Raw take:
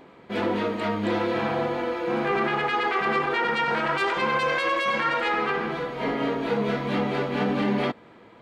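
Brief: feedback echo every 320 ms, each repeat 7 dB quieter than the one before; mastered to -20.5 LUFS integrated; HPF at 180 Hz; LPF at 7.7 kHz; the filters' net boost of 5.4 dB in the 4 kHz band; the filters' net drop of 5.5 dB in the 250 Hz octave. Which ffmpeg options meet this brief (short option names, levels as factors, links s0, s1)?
-af "highpass=180,lowpass=7700,equalizer=f=250:t=o:g=-6,equalizer=f=4000:t=o:g=7.5,aecho=1:1:320|640|960|1280|1600:0.447|0.201|0.0905|0.0407|0.0183,volume=1.5"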